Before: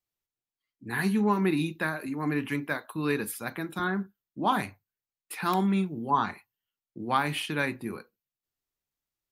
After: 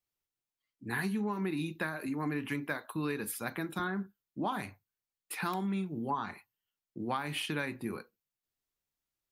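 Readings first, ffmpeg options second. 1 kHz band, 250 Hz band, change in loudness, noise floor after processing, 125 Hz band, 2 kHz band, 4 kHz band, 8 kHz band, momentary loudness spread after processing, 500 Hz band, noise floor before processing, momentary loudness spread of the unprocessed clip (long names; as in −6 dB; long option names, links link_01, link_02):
−8.5 dB, −6.5 dB, −7.0 dB, below −85 dBFS, −6.0 dB, −5.5 dB, −4.5 dB, −2.5 dB, 10 LU, −6.5 dB, below −85 dBFS, 14 LU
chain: -af "acompressor=threshold=-29dB:ratio=10,volume=-1dB"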